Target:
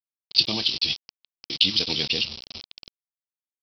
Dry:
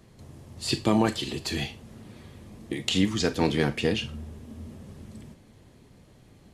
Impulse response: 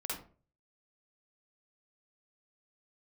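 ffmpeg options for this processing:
-af "adynamicsmooth=sensitivity=5:basefreq=2.1k,aresample=11025,acrusher=bits=5:mix=0:aa=0.000001,aresample=44100,atempo=1.8,aexciter=amount=15.9:drive=5:freq=2.7k,volume=-8.5dB"

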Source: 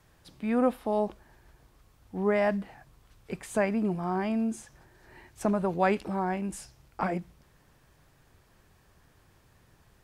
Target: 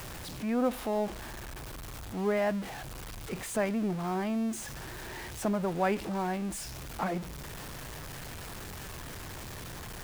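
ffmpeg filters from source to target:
-af "aeval=exprs='val(0)+0.5*0.0251*sgn(val(0))':c=same,volume=-4.5dB"

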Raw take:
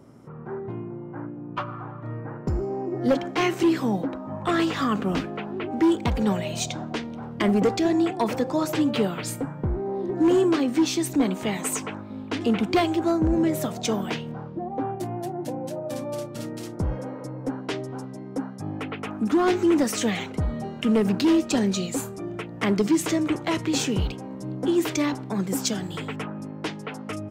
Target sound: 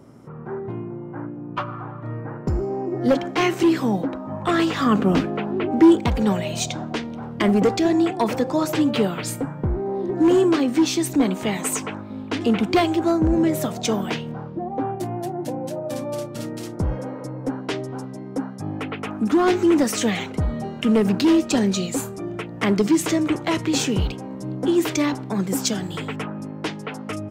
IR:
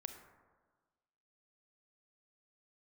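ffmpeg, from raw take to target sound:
-filter_complex "[0:a]asettb=1/sr,asplit=3[a][b][c];[a]atrim=end=4.864[d];[b]atrim=start=4.86:end=6,asetpts=PTS-STARTPTS,afade=t=in:d=0.004:c=qsin,afade=t=out:st=1.136:d=0.004:c=qsin,equalizer=f=280:w=0.34:g=4.5[e];[c]atrim=start=5.996[f];[d][e]acrossfade=d=0.004:c1=hsin:c2=qsin[g];[g][f]acrossfade=d=0.004:c1=qsin:c2=hsin,volume=3dB"

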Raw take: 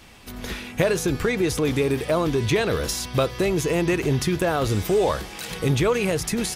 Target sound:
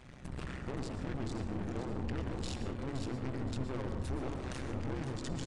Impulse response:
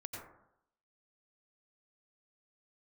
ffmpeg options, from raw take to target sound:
-filter_complex "[0:a]highshelf=f=3.4k:g=-4.5,atempo=1.2,equalizer=f=140:t=o:w=2.5:g=10.5,acompressor=threshold=-28dB:ratio=2,asetrate=32097,aresample=44100,atempo=1.37395,bandreject=f=60:t=h:w=6,bandreject=f=120:t=h:w=6,bandreject=f=180:t=h:w=6,bandreject=f=240:t=h:w=6,bandreject=f=300:t=h:w=6,aeval=exprs='(tanh(50.1*val(0)+0.75)-tanh(0.75))/50.1':c=same,tremolo=f=130:d=0.947,aecho=1:1:520|1040|1560|2080:0.398|0.135|0.046|0.0156,asplit=2[a][b];[1:a]atrim=start_sample=2205,asetrate=34398,aresample=44100[c];[b][c]afir=irnorm=-1:irlink=0,volume=1dB[d];[a][d]amix=inputs=2:normalize=0,aresample=22050,aresample=44100,volume=-4.5dB"

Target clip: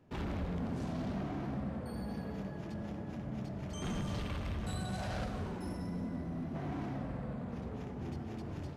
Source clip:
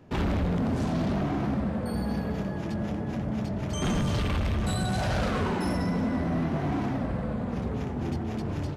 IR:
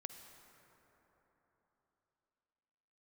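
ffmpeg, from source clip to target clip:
-filter_complex "[0:a]asettb=1/sr,asplit=3[a][b][c];[a]atrim=end=5.244[d];[b]atrim=start=5.24:end=6.55,asetpts=PTS-STARTPTS,afade=t=in:d=0.004:c=qsin,afade=t=out:st=1.306:d=0.004:c=qsin,equalizer=f=1.8k:w=0.3:g=-7[e];[c]atrim=start=6.546[f];[d][e]acrossfade=d=0.004:c1=hsin:c2=qsin[g];[g][f]acrossfade=d=0.004:c1=qsin:c2=hsin[h];[1:a]atrim=start_sample=2205,afade=t=out:st=0.41:d=0.01,atrim=end_sample=18522[i];[h][i]afir=irnorm=-1:irlink=0,volume=-6.5dB"

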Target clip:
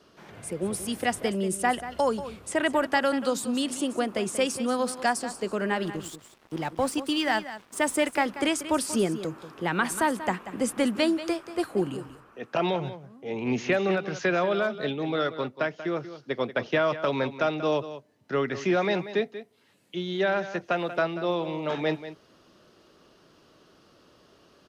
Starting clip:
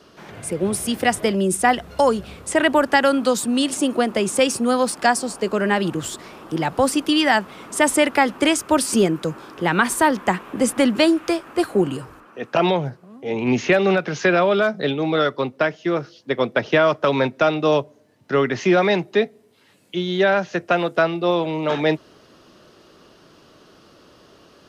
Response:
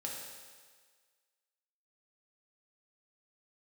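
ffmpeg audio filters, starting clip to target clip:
-filter_complex "[0:a]asettb=1/sr,asplit=3[a][b][c];[a]atrim=end=5.834[d];[b]atrim=start=5.83:end=8.26,asetpts=PTS-STARTPTS,afade=t=in:d=0.004:c=qsin,afade=t=out:st=2.426:d=0.004:c=qsin,aeval=exprs='sgn(val(0))*max(abs(val(0))-0.0133,0)':c=same[e];[c]atrim=start=8.256[f];[d][e]acrossfade=d=0.004:c1=hsin:c2=qsin[g];[g][f]acrossfade=d=0.004:c1=qsin:c2=hsin,aecho=1:1:186:0.224,volume=-8dB"

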